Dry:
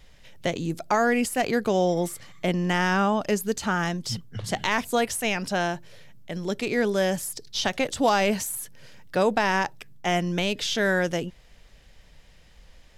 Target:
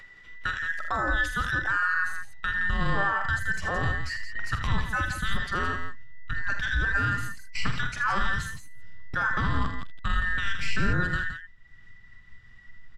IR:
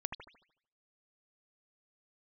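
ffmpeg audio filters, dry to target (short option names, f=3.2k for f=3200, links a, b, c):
-filter_complex "[0:a]afftfilt=real='real(if(between(b,1,1012),(2*floor((b-1)/92)+1)*92-b,b),0)':imag='imag(if(between(b,1,1012),(2*floor((b-1)/92)+1)*92-b,b),0)*if(between(b,1,1012),-1,1)':win_size=2048:overlap=0.75,aemphasis=mode=reproduction:type=75fm,agate=range=-18dB:threshold=-39dB:ratio=16:detection=peak,asubboost=boost=9:cutoff=130,alimiter=limit=-16.5dB:level=0:latency=1:release=39,acompressor=mode=upward:threshold=-31dB:ratio=2.5,asplit=2[a][b];[b]aecho=0:1:46|48|79|91|169:0.316|0.15|0.316|0.106|0.355[c];[a][c]amix=inputs=2:normalize=0,volume=-1.5dB"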